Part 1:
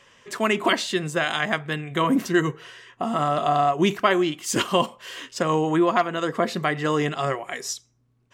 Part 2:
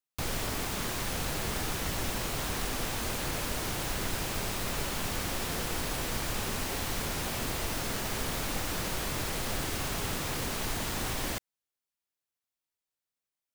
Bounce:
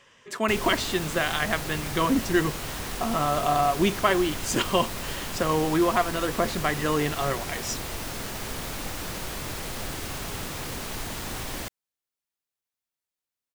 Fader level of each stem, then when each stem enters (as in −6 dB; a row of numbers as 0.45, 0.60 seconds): −2.5, −0.5 decibels; 0.00, 0.30 seconds